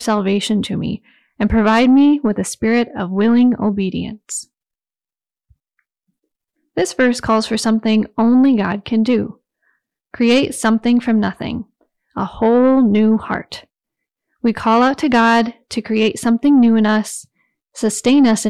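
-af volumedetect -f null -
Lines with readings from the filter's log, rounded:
mean_volume: -16.1 dB
max_volume: -6.0 dB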